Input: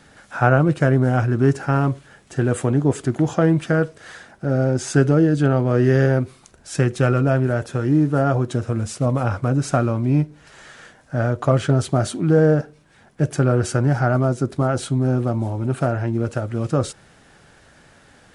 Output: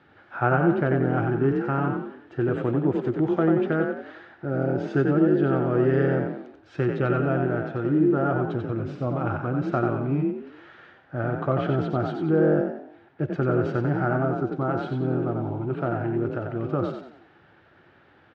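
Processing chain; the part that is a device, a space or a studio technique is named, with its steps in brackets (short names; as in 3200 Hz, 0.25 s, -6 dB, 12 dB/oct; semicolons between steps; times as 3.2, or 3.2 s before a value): frequency-shifting delay pedal into a guitar cabinet (frequency-shifting echo 91 ms, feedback 40%, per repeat +38 Hz, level -4.5 dB; speaker cabinet 85–3400 Hz, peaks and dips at 94 Hz +5 dB, 200 Hz -4 dB, 350 Hz +9 dB, 810 Hz +3 dB, 1300 Hz +5 dB); gain -8.5 dB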